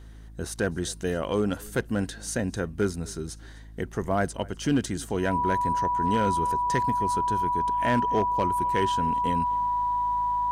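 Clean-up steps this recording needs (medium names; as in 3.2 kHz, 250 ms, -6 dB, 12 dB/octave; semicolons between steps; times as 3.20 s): clip repair -16 dBFS; de-hum 53.7 Hz, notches 6; band-stop 980 Hz, Q 30; inverse comb 254 ms -24 dB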